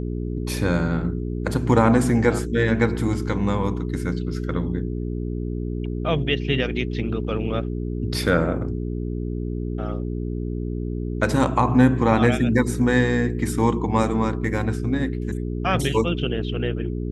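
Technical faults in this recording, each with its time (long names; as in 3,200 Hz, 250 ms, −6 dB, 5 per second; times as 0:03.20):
mains hum 60 Hz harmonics 7 −27 dBFS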